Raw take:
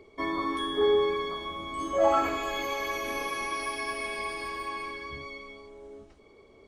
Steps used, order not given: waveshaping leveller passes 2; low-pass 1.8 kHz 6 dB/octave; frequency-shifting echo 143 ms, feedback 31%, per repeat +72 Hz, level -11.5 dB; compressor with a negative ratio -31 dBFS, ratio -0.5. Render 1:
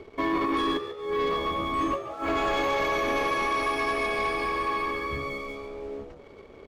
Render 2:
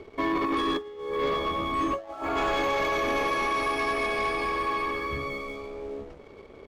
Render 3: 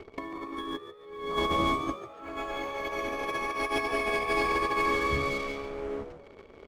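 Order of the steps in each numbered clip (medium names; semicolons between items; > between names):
compressor with a negative ratio > low-pass > waveshaping leveller > frequency-shifting echo; frequency-shifting echo > compressor with a negative ratio > low-pass > waveshaping leveller; low-pass > waveshaping leveller > compressor with a negative ratio > frequency-shifting echo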